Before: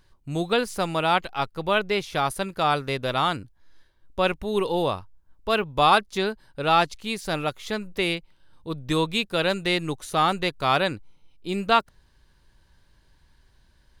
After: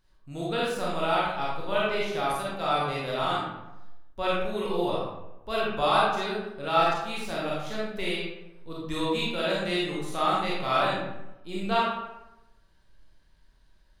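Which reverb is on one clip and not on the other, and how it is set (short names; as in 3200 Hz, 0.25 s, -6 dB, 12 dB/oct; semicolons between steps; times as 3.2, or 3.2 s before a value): digital reverb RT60 0.96 s, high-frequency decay 0.6×, pre-delay 0 ms, DRR -6.5 dB; gain -11 dB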